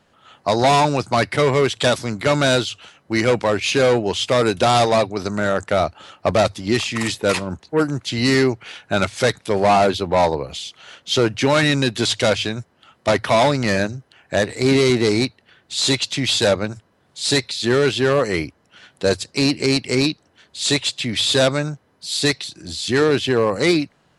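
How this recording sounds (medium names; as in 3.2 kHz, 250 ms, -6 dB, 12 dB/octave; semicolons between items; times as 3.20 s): noise floor -61 dBFS; spectral tilt -4.5 dB/octave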